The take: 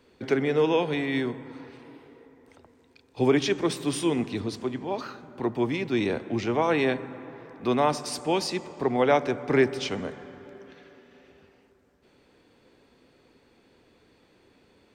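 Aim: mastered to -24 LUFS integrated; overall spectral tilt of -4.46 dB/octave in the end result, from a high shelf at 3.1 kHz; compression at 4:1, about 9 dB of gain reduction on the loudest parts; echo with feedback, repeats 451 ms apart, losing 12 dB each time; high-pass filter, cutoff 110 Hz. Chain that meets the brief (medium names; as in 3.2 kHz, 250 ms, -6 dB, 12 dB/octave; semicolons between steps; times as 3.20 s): high-pass 110 Hz; treble shelf 3.1 kHz -3.5 dB; compression 4:1, threshold -27 dBFS; feedback delay 451 ms, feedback 25%, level -12 dB; trim +8.5 dB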